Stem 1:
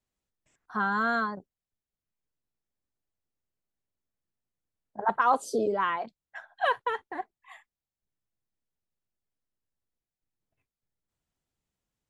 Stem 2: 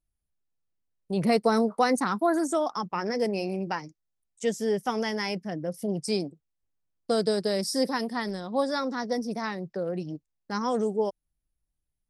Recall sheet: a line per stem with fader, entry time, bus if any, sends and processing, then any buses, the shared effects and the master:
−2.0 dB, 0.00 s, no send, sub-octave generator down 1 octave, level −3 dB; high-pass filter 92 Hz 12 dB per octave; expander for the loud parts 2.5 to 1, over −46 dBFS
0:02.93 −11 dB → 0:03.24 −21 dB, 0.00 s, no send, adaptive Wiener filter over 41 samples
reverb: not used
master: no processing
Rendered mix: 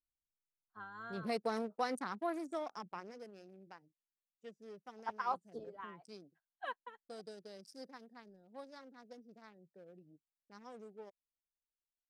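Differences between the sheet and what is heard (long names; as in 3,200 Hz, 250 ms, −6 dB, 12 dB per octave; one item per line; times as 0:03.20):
stem 1 −2.0 dB → −10.5 dB
master: extra low-shelf EQ 300 Hz −8.5 dB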